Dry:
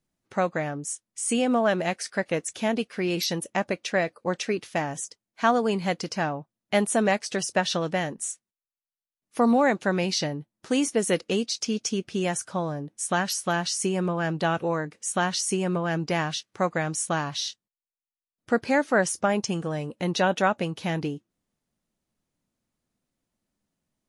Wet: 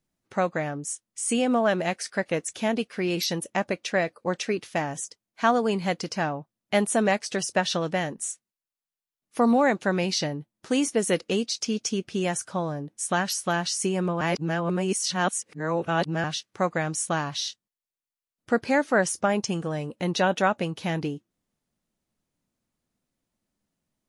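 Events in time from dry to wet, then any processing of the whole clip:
0:14.21–0:16.24: reverse

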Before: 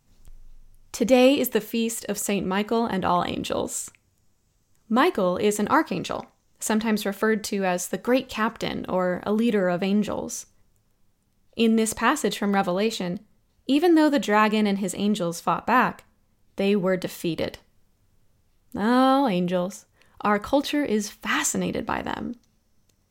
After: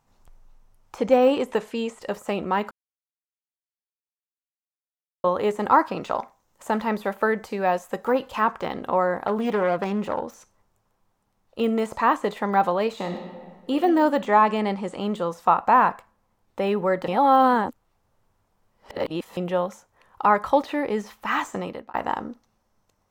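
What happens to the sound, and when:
0:00.98–0:02.02: low-pass filter 10,000 Hz 24 dB per octave
0:02.71–0:05.24: silence
0:06.16–0:08.41: high-shelf EQ 12,000 Hz +10 dB
0:09.27–0:10.34: phase distortion by the signal itself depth 0.16 ms
0:12.94–0:13.73: thrown reverb, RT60 1.7 s, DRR 3.5 dB
0:14.26–0:15.00: Butterworth low-pass 10,000 Hz 48 dB per octave
0:17.08–0:19.37: reverse
0:21.54–0:21.94: fade out
whole clip: de-essing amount 85%; parametric band 920 Hz +14 dB 1.9 octaves; level −6.5 dB

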